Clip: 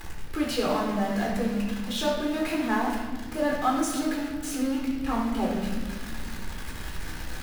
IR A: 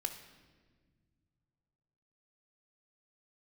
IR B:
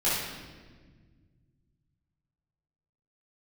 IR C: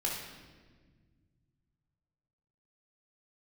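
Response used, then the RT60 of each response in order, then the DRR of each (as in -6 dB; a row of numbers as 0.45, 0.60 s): C; 1.6, 1.5, 1.5 s; 6.5, -11.0, -3.0 dB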